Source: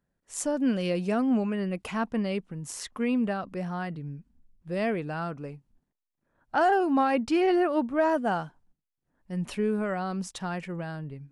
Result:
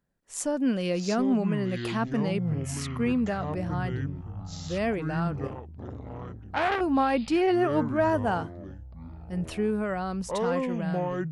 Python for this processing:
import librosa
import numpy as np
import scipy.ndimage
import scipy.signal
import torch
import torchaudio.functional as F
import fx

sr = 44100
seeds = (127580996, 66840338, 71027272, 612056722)

y = fx.echo_pitch(x, sr, ms=492, semitones=-7, count=3, db_per_echo=-6.0)
y = fx.transformer_sat(y, sr, knee_hz=1400.0, at=(5.47, 6.81))